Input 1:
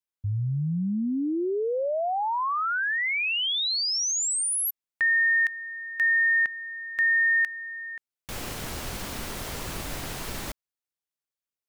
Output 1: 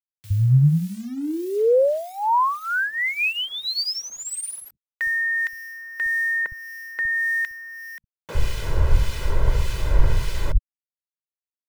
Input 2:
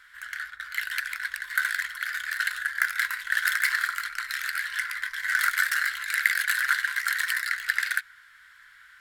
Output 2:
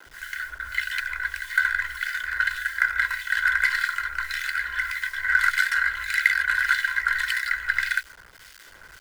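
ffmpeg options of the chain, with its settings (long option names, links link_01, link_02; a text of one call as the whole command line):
ffmpeg -i in.wav -filter_complex "[0:a]aemphasis=mode=reproduction:type=bsi,aecho=1:1:2:0.74,acrusher=bits=7:mix=0:aa=0.000001,acrossover=split=1800[link_01][link_02];[link_01]aeval=exprs='val(0)*(1-0.7/2+0.7/2*cos(2*PI*1.7*n/s))':channel_layout=same[link_03];[link_02]aeval=exprs='val(0)*(1-0.7/2-0.7/2*cos(2*PI*1.7*n/s))':channel_layout=same[link_04];[link_03][link_04]amix=inputs=2:normalize=0,acrossover=split=200[link_05][link_06];[link_05]adelay=60[link_07];[link_07][link_06]amix=inputs=2:normalize=0,volume=5.5dB" out.wav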